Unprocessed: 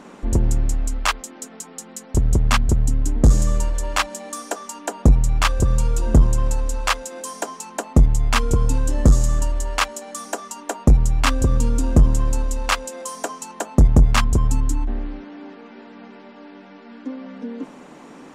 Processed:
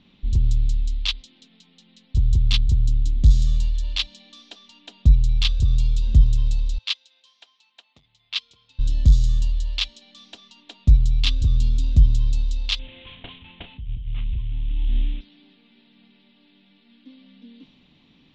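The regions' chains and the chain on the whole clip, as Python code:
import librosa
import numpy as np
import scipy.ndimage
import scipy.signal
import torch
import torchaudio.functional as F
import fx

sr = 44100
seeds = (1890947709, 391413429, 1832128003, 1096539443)

y = fx.chain(x, sr, fx.highpass(hz=850.0, slope=12),
    fx.upward_expand(threshold_db=-34.0, expansion=1.5), at=(6.78, 8.79))
y = fx.chain(y, sr, fx.cvsd(bps=16000),
    fx.over_compress(threshold_db=-23.0, ratio=-1.0),
    fx.doubler(ms=34.0, db=-8.5), at=(12.79, 15.21))
y = fx.env_lowpass(y, sr, base_hz=2400.0, full_db=-13.0)
y = fx.curve_eq(y, sr, hz=(100.0, 460.0, 1500.0, 3700.0, 9000.0), db=(0, -25, -24, 8, -23))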